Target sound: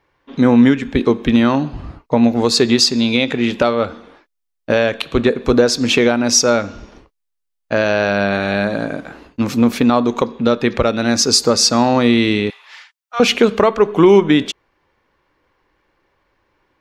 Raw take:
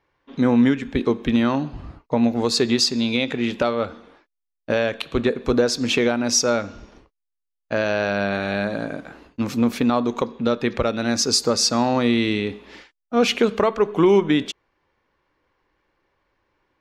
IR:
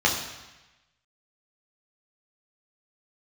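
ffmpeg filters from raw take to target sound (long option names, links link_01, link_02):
-filter_complex "[0:a]asettb=1/sr,asplit=3[link_01][link_02][link_03];[link_01]atrim=end=12.504[link_04];[link_02]atrim=start=12.5:end=13.2,asetpts=PTS-STARTPTS,afade=type=in:duration=0.004:curve=qsin,afade=type=out:start_time=0.696:duration=0.004:curve=qsin,highpass=frequency=920:width=0.5412,highpass=frequency=920:width=1.3066[link_05];[link_03]atrim=start=13.196[link_06];[link_04][link_05]acrossfade=duration=0.004:curve1=hsin:curve2=qsin[link_07];[link_07][link_06]acrossfade=duration=0.004:curve1=qsin:curve2=hsin,volume=6dB"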